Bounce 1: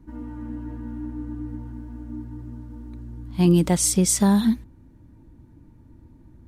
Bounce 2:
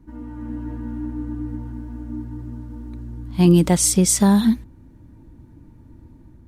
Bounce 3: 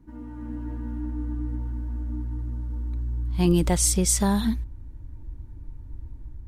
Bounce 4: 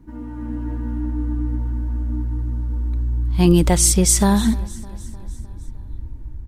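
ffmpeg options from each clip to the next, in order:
-af "dynaudnorm=f=170:g=5:m=4dB"
-af "asubboost=boost=10:cutoff=63,volume=-4dB"
-af "aecho=1:1:305|610|915|1220|1525:0.0891|0.0526|0.031|0.0183|0.0108,volume=6.5dB"

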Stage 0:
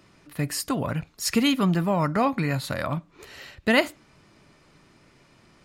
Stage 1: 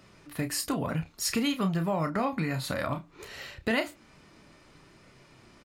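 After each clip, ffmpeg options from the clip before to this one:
-filter_complex "[0:a]flanger=delay=1.4:depth=3.2:regen=-67:speed=0.59:shape=triangular,acompressor=threshold=-33dB:ratio=2.5,asplit=2[a][b];[b]adelay=31,volume=-8.5dB[c];[a][c]amix=inputs=2:normalize=0,volume=4.5dB"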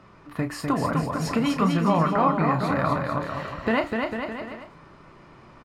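-filter_complex "[0:a]lowpass=f=1.5k:p=1,equalizer=f=1.1k:w=1.8:g=8,asplit=2[a][b];[b]aecho=0:1:250|450|610|738|840.4:0.631|0.398|0.251|0.158|0.1[c];[a][c]amix=inputs=2:normalize=0,volume=4.5dB"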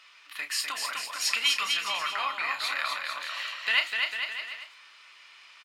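-af "highpass=f=2.9k:t=q:w=1.7,volume=7.5dB"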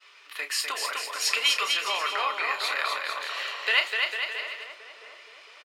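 -filter_complex "[0:a]highpass=f=420:t=q:w=4.9,asplit=2[a][b];[b]adelay=670,lowpass=f=890:p=1,volume=-9.5dB,asplit=2[c][d];[d]adelay=670,lowpass=f=890:p=1,volume=0.51,asplit=2[e][f];[f]adelay=670,lowpass=f=890:p=1,volume=0.51,asplit=2[g][h];[h]adelay=670,lowpass=f=890:p=1,volume=0.51,asplit=2[i][j];[j]adelay=670,lowpass=f=890:p=1,volume=0.51,asplit=2[k][l];[l]adelay=670,lowpass=f=890:p=1,volume=0.51[m];[a][c][e][g][i][k][m]amix=inputs=7:normalize=0,agate=range=-33dB:threshold=-54dB:ratio=3:detection=peak,volume=1.5dB"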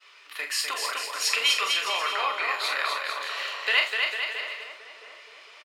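-filter_complex "[0:a]asplit=2[a][b];[b]adelay=44,volume=-7dB[c];[a][c]amix=inputs=2:normalize=0"

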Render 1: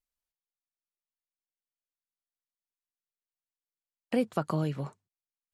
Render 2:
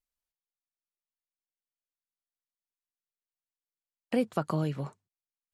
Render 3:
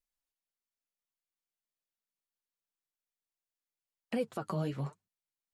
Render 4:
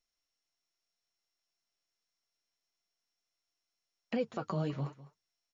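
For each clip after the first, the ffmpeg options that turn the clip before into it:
-af anull
-af "alimiter=limit=-21dB:level=0:latency=1:release=61,flanger=delay=3.9:depth=7.7:regen=26:speed=0.98:shape=triangular,volume=2dB"
-af "aecho=1:1:203:0.133" -ar 22050 -c:a mp2 -b:a 96k

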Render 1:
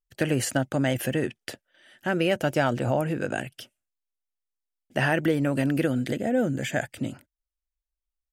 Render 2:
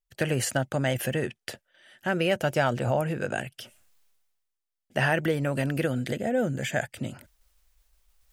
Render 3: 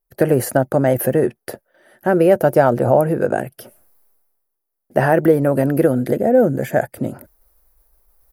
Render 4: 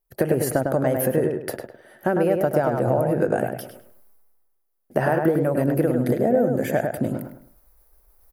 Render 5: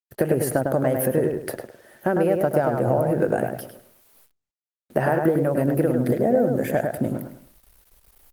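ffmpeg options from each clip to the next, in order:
-af "equalizer=f=290:w=3:g=-7.5,areverse,acompressor=mode=upward:threshold=-44dB:ratio=2.5,areverse"
-af "firequalizer=gain_entry='entry(100,0);entry(360,9);entry(3000,-15);entry(4500,-7);entry(7600,-10);entry(11000,7)':delay=0.05:min_phase=1,volume=6dB"
-filter_complex "[0:a]acompressor=threshold=-18dB:ratio=6,asplit=2[a][b];[b]adelay=103,lowpass=f=2.6k:p=1,volume=-4dB,asplit=2[c][d];[d]adelay=103,lowpass=f=2.6k:p=1,volume=0.33,asplit=2[e][f];[f]adelay=103,lowpass=f=2.6k:p=1,volume=0.33,asplit=2[g][h];[h]adelay=103,lowpass=f=2.6k:p=1,volume=0.33[i];[c][e][g][i]amix=inputs=4:normalize=0[j];[a][j]amix=inputs=2:normalize=0"
-af "acrusher=bits=8:mix=0:aa=0.000001" -ar 48000 -c:a libopus -b:a 32k

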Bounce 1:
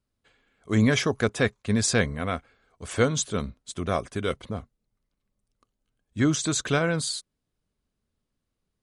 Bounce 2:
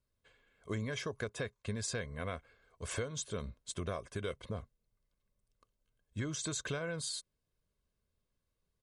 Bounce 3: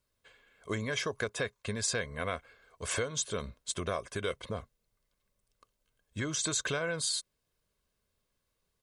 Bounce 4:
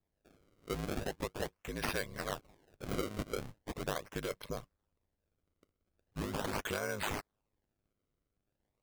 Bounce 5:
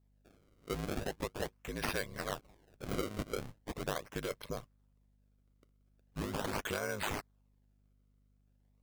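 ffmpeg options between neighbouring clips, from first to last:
-af "aecho=1:1:1.9:0.42,acompressor=threshold=-30dB:ratio=12,volume=-4.5dB"
-af "lowshelf=f=330:g=-8,volume=7.5dB"
-af "acrusher=samples=29:mix=1:aa=0.000001:lfo=1:lforange=46.4:lforate=0.4,aeval=exprs='val(0)*sin(2*PI*51*n/s)':c=same,volume=-1dB"
-af "aeval=exprs='val(0)+0.000355*(sin(2*PI*50*n/s)+sin(2*PI*2*50*n/s)/2+sin(2*PI*3*50*n/s)/3+sin(2*PI*4*50*n/s)/4+sin(2*PI*5*50*n/s)/5)':c=same"

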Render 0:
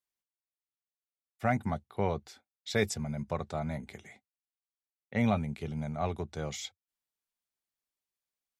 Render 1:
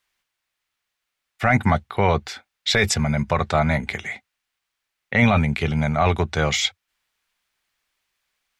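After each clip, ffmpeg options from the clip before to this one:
-af "equalizer=f=2k:w=0.39:g=14.5,alimiter=limit=-17dB:level=0:latency=1:release=15,lowshelf=f=120:g=12,volume=8.5dB"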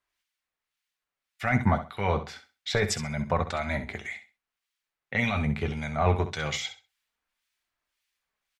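-filter_complex "[0:a]flanger=delay=3:depth=6.4:regen=-51:speed=0.26:shape=sinusoidal,acrossover=split=1600[a][b];[a]aeval=exprs='val(0)*(1-0.7/2+0.7/2*cos(2*PI*1.8*n/s))':c=same[c];[b]aeval=exprs='val(0)*(1-0.7/2-0.7/2*cos(2*PI*1.8*n/s))':c=same[d];[c][d]amix=inputs=2:normalize=0,aecho=1:1:65|130|195:0.266|0.0585|0.0129"

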